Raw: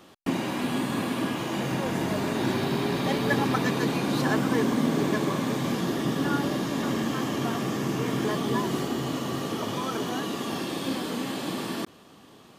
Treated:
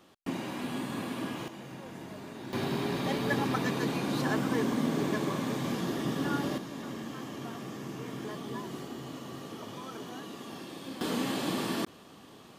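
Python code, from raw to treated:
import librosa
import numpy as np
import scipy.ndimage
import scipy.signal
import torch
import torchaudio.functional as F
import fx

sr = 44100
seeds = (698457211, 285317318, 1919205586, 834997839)

y = fx.gain(x, sr, db=fx.steps((0.0, -7.5), (1.48, -16.0), (2.53, -5.0), (6.58, -12.0), (11.01, -0.5)))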